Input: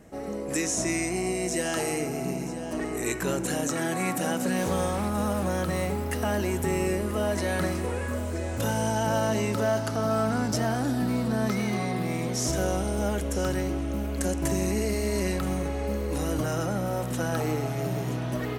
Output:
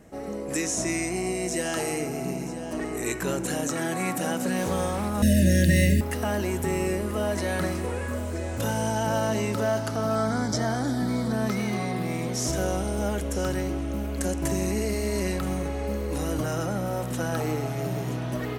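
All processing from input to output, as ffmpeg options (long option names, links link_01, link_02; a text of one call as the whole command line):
ffmpeg -i in.wav -filter_complex "[0:a]asettb=1/sr,asplit=3[link_01][link_02][link_03];[link_01]atrim=end=5.224[link_04];[link_02]atrim=start=5.22:end=6.01,asetpts=PTS-STARTPTS,afade=type=in:duration=0.004:curve=qsin,afade=type=out:start_time=0.786:duration=0.004:curve=qsin,aecho=1:1:1.1:0.8,atrim=end_sample=34839,acontrast=80,asuperstop=centerf=1000:order=12:qfactor=0.96[link_05];[link_03]atrim=start=6.006[link_06];[link_04][link_05]acrossfade=duration=0.004:curve1=hsin:curve2=qsin[link_07];[link_07][link_06]acrossfade=duration=0.004:curve1=qsin:curve2=hsin,asettb=1/sr,asplit=3[link_08][link_09][link_10];[link_08]atrim=end=10.154[link_11];[link_09]atrim=start=10.15:end=11.33,asetpts=PTS-STARTPTS,afade=type=in:duration=0.004:curve=qsin,afade=type=out:start_time=1.176:duration=0.004:curve=qsin,acrossover=split=6400[link_12][link_13];[link_13]acompressor=threshold=-60dB:ratio=4:attack=1:release=60[link_14];[link_12][link_14]amix=inputs=2:normalize=0,asuperstop=centerf=2700:order=4:qfactor=4,equalizer=frequency=9700:width=0.52:gain=8.5[link_15];[link_10]atrim=start=11.326[link_16];[link_11][link_15]acrossfade=duration=0.004:curve1=hsin:curve2=qsin[link_17];[link_17][link_16]acrossfade=duration=0.004:curve1=qsin:curve2=hsin" out.wav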